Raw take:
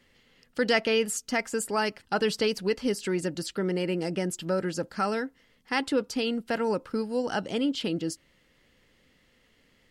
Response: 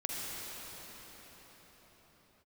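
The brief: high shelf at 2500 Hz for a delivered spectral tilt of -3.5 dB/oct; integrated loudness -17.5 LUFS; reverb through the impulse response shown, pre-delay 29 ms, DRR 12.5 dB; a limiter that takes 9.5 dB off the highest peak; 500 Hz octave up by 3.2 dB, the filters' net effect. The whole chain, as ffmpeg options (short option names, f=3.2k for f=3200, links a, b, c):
-filter_complex "[0:a]equalizer=f=500:t=o:g=3.5,highshelf=f=2.5k:g=6.5,alimiter=limit=-17.5dB:level=0:latency=1,asplit=2[a][b];[1:a]atrim=start_sample=2205,adelay=29[c];[b][c]afir=irnorm=-1:irlink=0,volume=-17dB[d];[a][d]amix=inputs=2:normalize=0,volume=10.5dB"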